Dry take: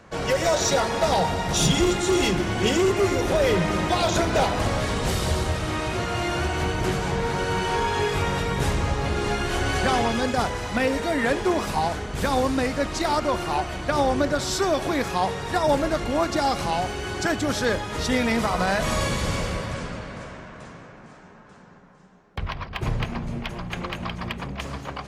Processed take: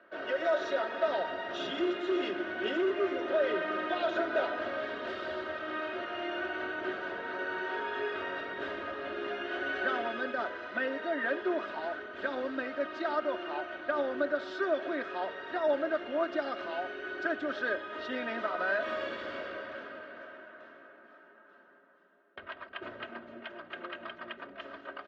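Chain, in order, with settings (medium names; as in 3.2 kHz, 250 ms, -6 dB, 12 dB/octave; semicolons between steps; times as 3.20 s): cabinet simulation 430–3000 Hz, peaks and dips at 430 Hz +4 dB, 950 Hz -9 dB, 1.5 kHz +6 dB, 2.3 kHz -9 dB; band-stop 830 Hz, Q 18; comb 3.2 ms, depth 72%; trim -8.5 dB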